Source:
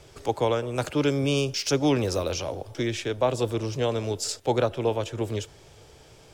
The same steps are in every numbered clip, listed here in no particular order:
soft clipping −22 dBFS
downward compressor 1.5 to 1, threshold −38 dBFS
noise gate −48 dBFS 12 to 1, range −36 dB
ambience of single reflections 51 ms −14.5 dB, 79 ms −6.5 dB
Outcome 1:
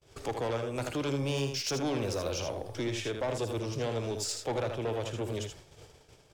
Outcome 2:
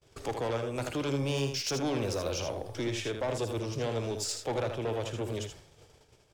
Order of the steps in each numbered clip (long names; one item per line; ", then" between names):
soft clipping, then ambience of single reflections, then downward compressor, then noise gate
soft clipping, then noise gate, then downward compressor, then ambience of single reflections